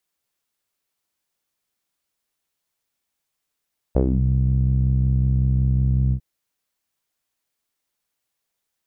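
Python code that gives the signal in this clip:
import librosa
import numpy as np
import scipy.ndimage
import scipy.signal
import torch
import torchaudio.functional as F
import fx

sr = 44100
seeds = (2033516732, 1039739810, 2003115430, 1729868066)

y = fx.sub_voice(sr, note=36, wave='saw', cutoff_hz=150.0, q=2.8, env_oct=2.0, env_s=0.26, attack_ms=8.1, decay_s=0.09, sustain_db=-5, release_s=0.08, note_s=2.17, slope=12)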